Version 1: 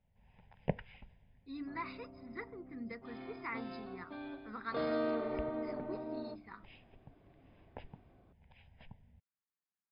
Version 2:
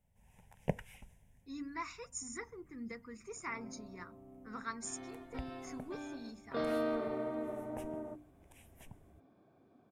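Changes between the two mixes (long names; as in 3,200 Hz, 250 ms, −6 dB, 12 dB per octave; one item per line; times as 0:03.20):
second sound: entry +1.80 s
master: remove linear-phase brick-wall low-pass 5,100 Hz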